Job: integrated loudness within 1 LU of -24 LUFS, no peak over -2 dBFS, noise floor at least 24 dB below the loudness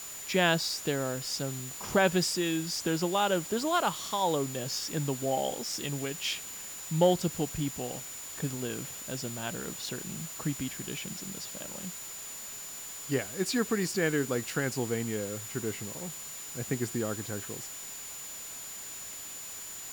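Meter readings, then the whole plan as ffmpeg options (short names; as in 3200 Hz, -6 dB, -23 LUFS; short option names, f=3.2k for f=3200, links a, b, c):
steady tone 7000 Hz; tone level -42 dBFS; noise floor -42 dBFS; noise floor target -56 dBFS; loudness -32.0 LUFS; peak -12.5 dBFS; loudness target -24.0 LUFS
-> -af "bandreject=f=7k:w=30"
-af "afftdn=nr=14:nf=-42"
-af "volume=8dB"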